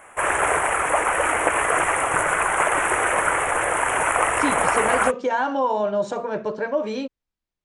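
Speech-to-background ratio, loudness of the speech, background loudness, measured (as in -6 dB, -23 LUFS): -4.5 dB, -25.0 LUFS, -20.5 LUFS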